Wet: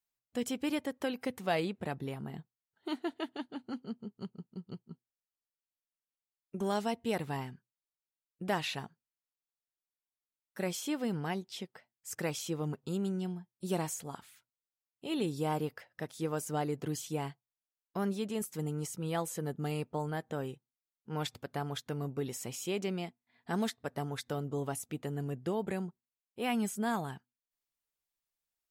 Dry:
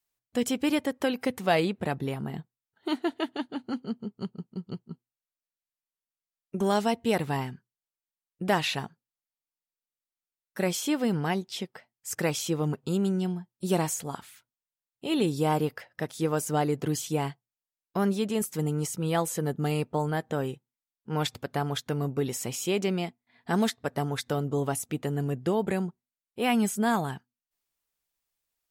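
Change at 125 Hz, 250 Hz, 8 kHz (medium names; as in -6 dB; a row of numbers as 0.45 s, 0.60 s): -7.5 dB, -7.5 dB, -7.5 dB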